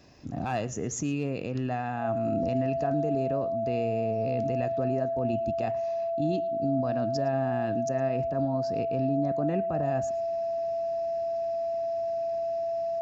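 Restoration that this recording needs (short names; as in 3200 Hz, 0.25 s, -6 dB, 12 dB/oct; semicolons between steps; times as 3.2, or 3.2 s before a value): notch 670 Hz, Q 30; inverse comb 0.111 s -21 dB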